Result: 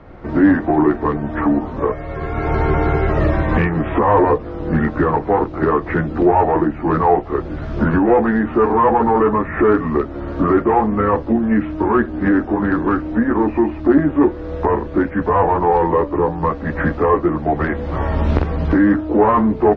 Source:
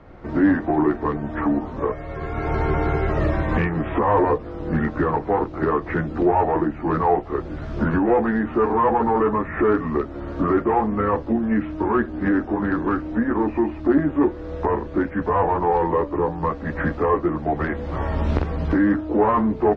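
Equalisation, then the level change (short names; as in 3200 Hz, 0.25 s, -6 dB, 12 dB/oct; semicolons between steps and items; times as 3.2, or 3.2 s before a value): air absorption 55 m; +5.0 dB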